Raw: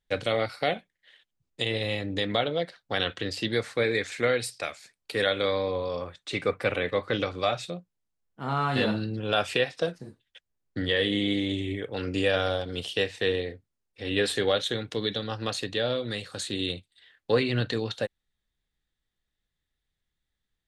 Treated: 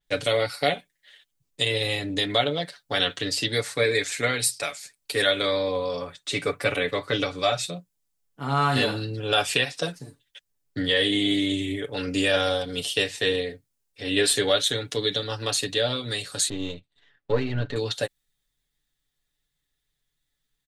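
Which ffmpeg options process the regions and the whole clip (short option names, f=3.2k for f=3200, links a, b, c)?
-filter_complex "[0:a]asettb=1/sr,asplit=3[a][b][c];[a]atrim=end=16.494[d];[b]atrim=start=16.49:end=17.76,asetpts=PTS-STARTPTS,afade=t=in:d=0.004:c=qsin,afade=t=out:st=1.266:d=0.004:c=qsin,aeval=exprs='if(lt(val(0),0),0.447*val(0),val(0))':c=same,lowpass=f=1.7k:p=1,aemphasis=mode=reproduction:type=50fm[e];[c]atrim=start=17.756[f];[d][e]acrossfade=d=0.004:c1=hsin:c2=qsin[g];[g][f]acrossfade=d=0.004:c1=qsin:c2=hsin,highshelf=f=4k:g=9,aecho=1:1:7:0.67,adynamicequalizer=threshold=0.00891:dfrequency=5700:dqfactor=0.7:tfrequency=5700:tqfactor=0.7:attack=5:release=100:ratio=0.375:range=2.5:mode=boostabove:tftype=highshelf"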